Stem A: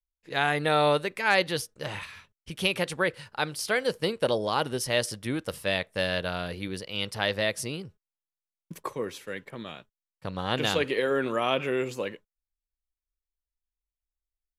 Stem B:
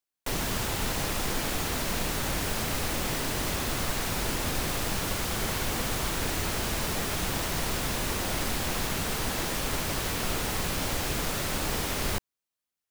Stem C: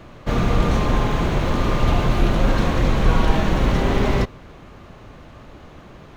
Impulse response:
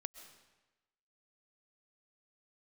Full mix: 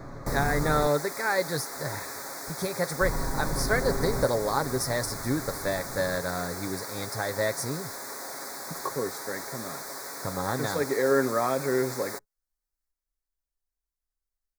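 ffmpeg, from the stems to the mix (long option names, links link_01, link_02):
-filter_complex "[0:a]alimiter=limit=-14.5dB:level=0:latency=1:release=218,volume=1dB[link_01];[1:a]highpass=430,volume=-5.5dB[link_02];[2:a]acompressor=threshold=-24dB:ratio=6,asoftclip=type=tanh:threshold=-25dB,volume=0.5dB,asplit=3[link_03][link_04][link_05];[link_03]atrim=end=0.87,asetpts=PTS-STARTPTS,afade=type=out:start_time=0.866:duration=0.004:curve=hsin[link_06];[link_04]atrim=start=0.87:end=3.01,asetpts=PTS-STARTPTS,volume=0[link_07];[link_05]atrim=start=3.01,asetpts=PTS-STARTPTS,afade=type=in:duration=0.004:curve=hsin[link_08];[link_06][link_07][link_08]concat=n=3:v=0:a=1[link_09];[link_01][link_02][link_09]amix=inputs=3:normalize=0,asuperstop=centerf=2900:order=4:qfactor=1.3,aecho=1:1:7.3:0.41"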